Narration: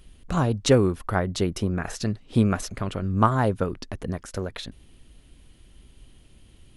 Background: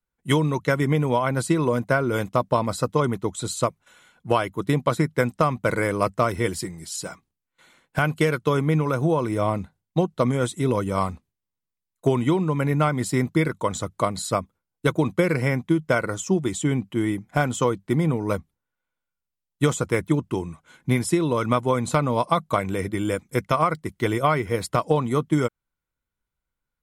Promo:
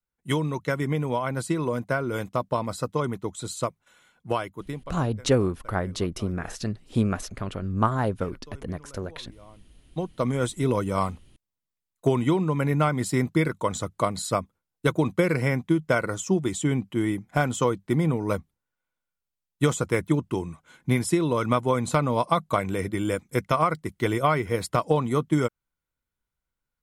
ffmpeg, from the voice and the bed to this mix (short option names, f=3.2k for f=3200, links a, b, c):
-filter_complex "[0:a]adelay=4600,volume=-3dB[a];[1:a]volume=20.5dB,afade=t=out:st=4.29:d=0.69:silence=0.0794328,afade=t=in:st=9.67:d=0.81:silence=0.0530884[b];[a][b]amix=inputs=2:normalize=0"